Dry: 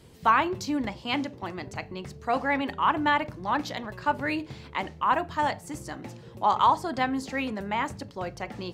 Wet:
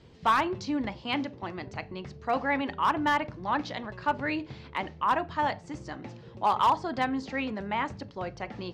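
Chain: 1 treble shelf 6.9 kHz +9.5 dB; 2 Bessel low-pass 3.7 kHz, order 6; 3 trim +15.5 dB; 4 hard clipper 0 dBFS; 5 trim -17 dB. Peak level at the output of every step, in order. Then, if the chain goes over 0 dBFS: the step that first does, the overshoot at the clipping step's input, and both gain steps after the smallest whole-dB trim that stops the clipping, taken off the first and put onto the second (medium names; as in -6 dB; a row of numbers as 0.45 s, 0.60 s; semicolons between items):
-9.0 dBFS, -9.5 dBFS, +6.0 dBFS, 0.0 dBFS, -17.0 dBFS; step 3, 6.0 dB; step 3 +9.5 dB, step 5 -11 dB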